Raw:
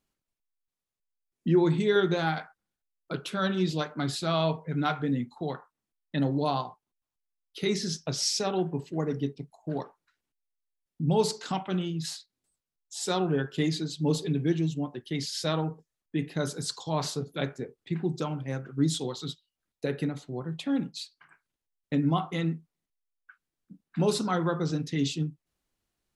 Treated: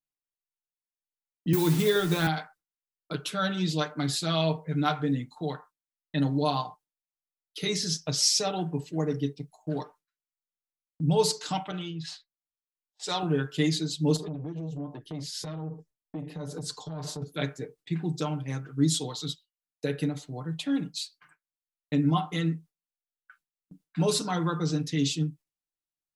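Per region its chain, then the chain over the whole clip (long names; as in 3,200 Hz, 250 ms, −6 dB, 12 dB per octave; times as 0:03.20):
0:01.53–0:02.27: hold until the input has moved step −38.5 dBFS + multiband upward and downward compressor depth 100%
0:11.71–0:13.23: parametric band 220 Hz −9.5 dB 0.99 octaves + low-pass that shuts in the quiet parts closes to 380 Hz, open at −28 dBFS
0:14.16–0:17.22: tilt shelving filter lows +7.5 dB, about 1,100 Hz + downward compressor 20 to 1, threshold −30 dBFS + saturating transformer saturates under 490 Hz
whole clip: noise gate with hold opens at −44 dBFS; high-shelf EQ 3,400 Hz +8 dB; comb filter 6.6 ms; level −2.5 dB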